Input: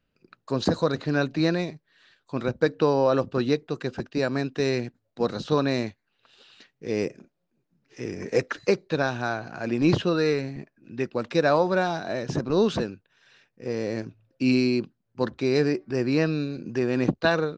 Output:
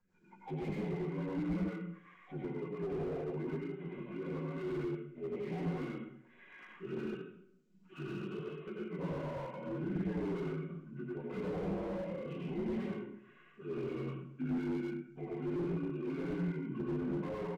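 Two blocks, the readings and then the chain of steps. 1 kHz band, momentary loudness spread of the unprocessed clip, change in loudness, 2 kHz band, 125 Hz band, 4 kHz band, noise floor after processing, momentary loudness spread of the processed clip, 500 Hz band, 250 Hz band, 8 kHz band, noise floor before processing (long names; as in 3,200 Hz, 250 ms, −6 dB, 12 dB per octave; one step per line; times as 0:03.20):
−17.0 dB, 12 LU, −13.5 dB, −19.0 dB, −10.0 dB, −23.5 dB, −63 dBFS, 10 LU, −15.0 dB, −11.5 dB, can't be measured, −77 dBFS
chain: partials spread apart or drawn together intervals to 77%
mains-hum notches 60/120/180/240 Hz
comb filter 5.4 ms, depth 38%
downward compressor 2.5 to 1, threshold −44 dBFS, peak gain reduction 18.5 dB
auto-filter notch saw up 8.3 Hz 280–2,400 Hz
harmonic and percussive parts rebalanced percussive −7 dB
flanger 1.4 Hz, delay 9.5 ms, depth 7.2 ms, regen +22%
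rotating-speaker cabinet horn 5.5 Hz, later 0.85 Hz, at 0:03.57
dense smooth reverb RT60 0.66 s, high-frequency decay 0.9×, pre-delay 80 ms, DRR −4 dB
slew-rate limiting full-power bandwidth 3.3 Hz
level +6.5 dB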